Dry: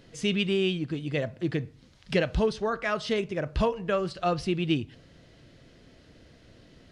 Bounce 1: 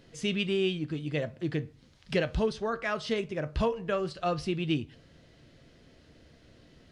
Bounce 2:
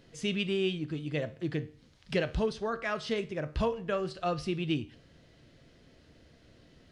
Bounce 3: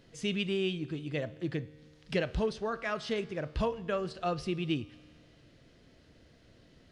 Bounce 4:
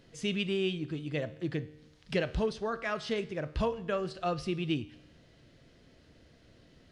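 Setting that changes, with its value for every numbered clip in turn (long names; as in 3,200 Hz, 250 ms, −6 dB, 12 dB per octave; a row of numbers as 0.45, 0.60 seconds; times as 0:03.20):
tuned comb filter, decay: 0.16, 0.45, 2.1, 1 seconds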